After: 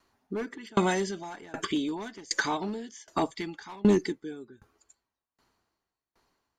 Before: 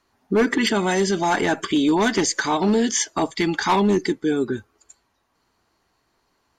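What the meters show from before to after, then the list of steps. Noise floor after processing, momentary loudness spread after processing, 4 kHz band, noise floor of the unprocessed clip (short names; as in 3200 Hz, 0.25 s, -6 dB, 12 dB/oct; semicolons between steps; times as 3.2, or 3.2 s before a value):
under -85 dBFS, 14 LU, -11.5 dB, -70 dBFS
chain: dB-ramp tremolo decaying 1.3 Hz, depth 30 dB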